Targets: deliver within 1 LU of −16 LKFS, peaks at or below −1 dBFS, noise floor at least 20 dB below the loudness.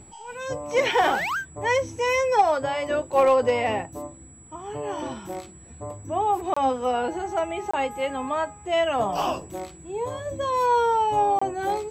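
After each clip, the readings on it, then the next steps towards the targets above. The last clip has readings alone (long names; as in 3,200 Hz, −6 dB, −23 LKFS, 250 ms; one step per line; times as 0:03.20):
number of dropouts 3; longest dropout 25 ms; interfering tone 7,800 Hz; level of the tone −49 dBFS; integrated loudness −24.5 LKFS; sample peak −8.5 dBFS; target loudness −16.0 LKFS
→ repair the gap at 0:06.54/0:07.71/0:11.39, 25 ms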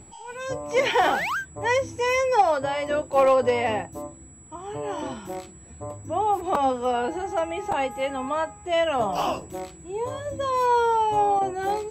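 number of dropouts 0; interfering tone 7,800 Hz; level of the tone −49 dBFS
→ notch filter 7,800 Hz, Q 30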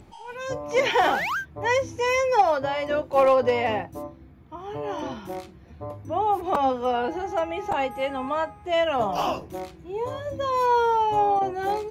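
interfering tone none found; integrated loudness −24.5 LKFS; sample peak −8.5 dBFS; target loudness −16.0 LKFS
→ level +8.5 dB
brickwall limiter −1 dBFS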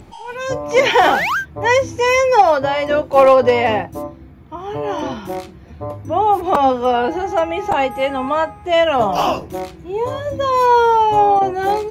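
integrated loudness −16.0 LKFS; sample peak −1.0 dBFS; background noise floor −40 dBFS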